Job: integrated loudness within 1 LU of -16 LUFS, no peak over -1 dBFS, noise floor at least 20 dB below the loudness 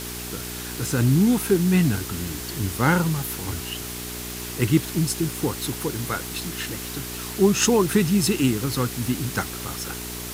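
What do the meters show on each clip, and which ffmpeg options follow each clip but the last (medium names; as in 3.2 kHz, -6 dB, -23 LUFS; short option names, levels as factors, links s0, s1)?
hum 60 Hz; highest harmonic 420 Hz; hum level -34 dBFS; noise floor -33 dBFS; noise floor target -44 dBFS; loudness -23.5 LUFS; peak level -5.0 dBFS; loudness target -16.0 LUFS
-> -af "bandreject=f=60:t=h:w=4,bandreject=f=120:t=h:w=4,bandreject=f=180:t=h:w=4,bandreject=f=240:t=h:w=4,bandreject=f=300:t=h:w=4,bandreject=f=360:t=h:w=4,bandreject=f=420:t=h:w=4"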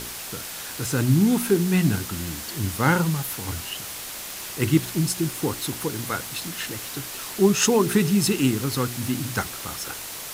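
hum not found; noise floor -35 dBFS; noise floor target -44 dBFS
-> -af "afftdn=nr=9:nf=-35"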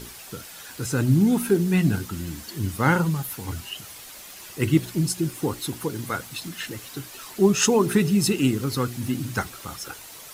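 noise floor -43 dBFS; noise floor target -44 dBFS
-> -af "afftdn=nr=6:nf=-43"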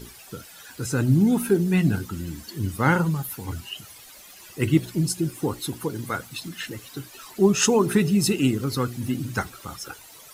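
noise floor -47 dBFS; loudness -24.0 LUFS; peak level -5.5 dBFS; loudness target -16.0 LUFS
-> -af "volume=2.51,alimiter=limit=0.891:level=0:latency=1"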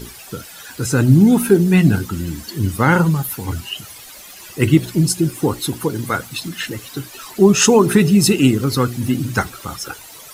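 loudness -16.5 LUFS; peak level -1.0 dBFS; noise floor -39 dBFS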